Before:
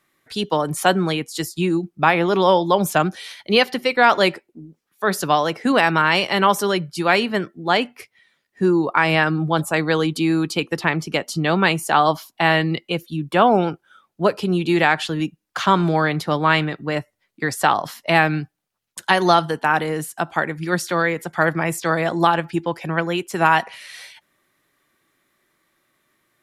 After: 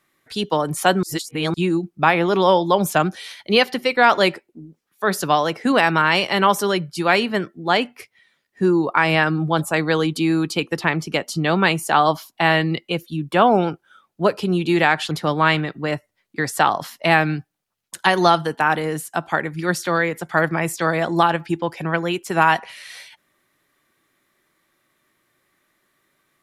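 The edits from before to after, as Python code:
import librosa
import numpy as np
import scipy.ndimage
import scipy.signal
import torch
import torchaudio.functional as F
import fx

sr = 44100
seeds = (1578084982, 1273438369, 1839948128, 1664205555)

y = fx.edit(x, sr, fx.reverse_span(start_s=1.03, length_s=0.51),
    fx.cut(start_s=15.11, length_s=1.04), tone=tone)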